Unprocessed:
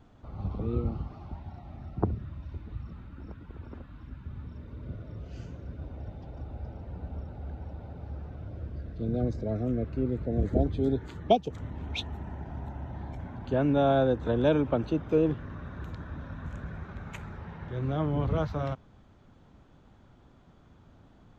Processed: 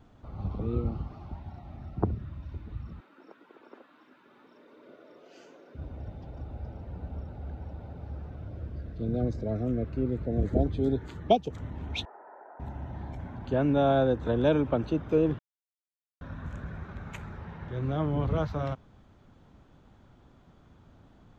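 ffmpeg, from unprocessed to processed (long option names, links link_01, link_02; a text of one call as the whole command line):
ffmpeg -i in.wav -filter_complex "[0:a]asettb=1/sr,asplit=3[link_01][link_02][link_03];[link_01]atrim=end=3.004[link_04];[link_02]atrim=start=3:end=5.75,asetpts=PTS-STARTPTS,afade=type=in:duration=0.004:curve=qsin,afade=type=out:start_time=2.746:duration=0.004:curve=qsin,highpass=frequency=330:width=0.5412,highpass=frequency=330:width=1.3066[link_05];[link_03]atrim=start=5.746[link_06];[link_04][link_05]acrossfade=duration=0.004:curve1=hsin:curve2=qsin[link_07];[link_07][link_06]acrossfade=duration=0.004:curve1=qsin:curve2=hsin,asettb=1/sr,asplit=3[link_08][link_09][link_10];[link_08]atrim=end=12.054[link_11];[link_09]atrim=start=12.05:end=12.6,asetpts=PTS-STARTPTS,afade=type=in:duration=0.004:curve=qsin,afade=type=out:start_time=0.546:duration=0.004:curve=qsin,asuperpass=centerf=850:order=8:qfactor=0.68[link_12];[link_10]atrim=start=12.596[link_13];[link_11][link_12]acrossfade=duration=0.004:curve1=hsin:curve2=qsin[link_14];[link_14][link_13]acrossfade=duration=0.004:curve1=qsin:curve2=hsin,asplit=3[link_15][link_16][link_17];[link_15]atrim=end=15.39,asetpts=PTS-STARTPTS,afade=type=out:start_time=15.386:duration=0.004:curve=hsin[link_18];[link_16]atrim=start=15.39:end=16.21,asetpts=PTS-STARTPTS,volume=0[link_19];[link_17]atrim=start=16.21,asetpts=PTS-STARTPTS,afade=type=in:duration=0.004:curve=hsin[link_20];[link_18][link_19][link_20]concat=n=3:v=0:a=1" out.wav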